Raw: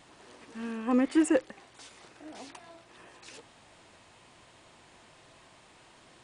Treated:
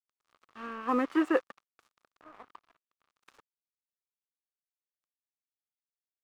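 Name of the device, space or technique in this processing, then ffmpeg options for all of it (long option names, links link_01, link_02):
pocket radio on a weak battery: -filter_complex "[0:a]asettb=1/sr,asplit=3[link_01][link_02][link_03];[link_01]atrim=end=2.244[link_04];[link_02]atrim=start=2.24:end=3.1,asetpts=PTS-STARTPTS,afade=type=in:duration=0.004:curve=qsin,afade=type=out:start_time=0.856:duration=0.004:curve=qsin,lowpass=frequency=1700:width=0.5412,lowpass=frequency=1700:width=1.3066[link_05];[link_03]atrim=start=3.096[link_06];[link_04][link_05]acrossfade=duration=0.004:curve1=hsin:curve2=qsin[link_07];[link_07][link_06]acrossfade=duration=0.004:curve1=qsin:curve2=hsin,highpass=260,lowpass=3100,aeval=exprs='sgn(val(0))*max(abs(val(0))-0.00447,0)':channel_layout=same,lowshelf=frequency=220:gain=-4,equalizer=frequency=1200:width_type=o:width=0.51:gain=11.5"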